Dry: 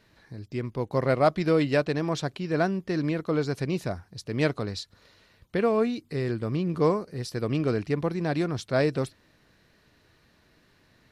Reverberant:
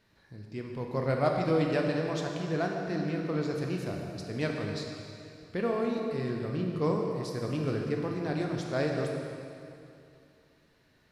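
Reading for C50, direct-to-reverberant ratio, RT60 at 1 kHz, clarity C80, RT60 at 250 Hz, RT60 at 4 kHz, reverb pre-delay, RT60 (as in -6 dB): 2.0 dB, 0.5 dB, 2.7 s, 3.0 dB, 2.6 s, 2.3 s, 15 ms, 2.6 s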